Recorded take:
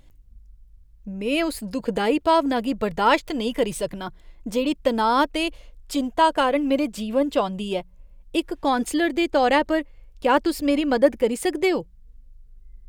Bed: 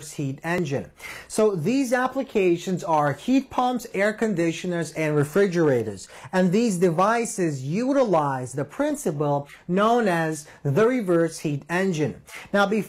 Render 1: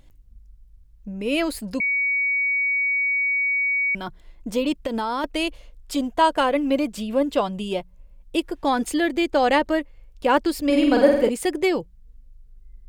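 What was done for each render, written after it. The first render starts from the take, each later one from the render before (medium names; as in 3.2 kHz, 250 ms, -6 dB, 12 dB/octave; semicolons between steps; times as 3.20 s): 1.80–3.95 s: bleep 2.25 kHz -19 dBFS; 4.75–5.24 s: compression 10:1, threshold -21 dBFS; 10.65–11.29 s: flutter echo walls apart 8.2 m, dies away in 0.76 s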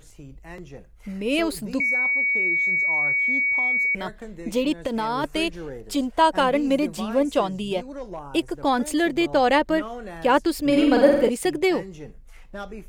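add bed -15.5 dB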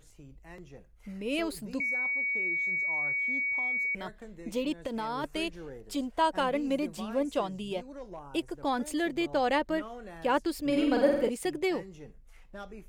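trim -8.5 dB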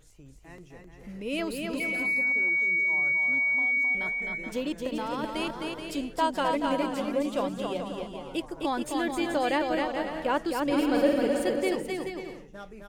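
bouncing-ball echo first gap 260 ms, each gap 0.65×, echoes 5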